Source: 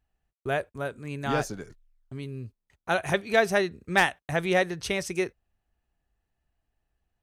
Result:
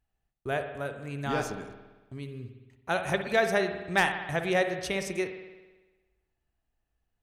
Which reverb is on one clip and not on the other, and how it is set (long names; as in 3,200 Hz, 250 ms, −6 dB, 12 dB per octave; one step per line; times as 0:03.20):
spring reverb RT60 1.2 s, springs 56 ms, chirp 25 ms, DRR 7 dB
level −3 dB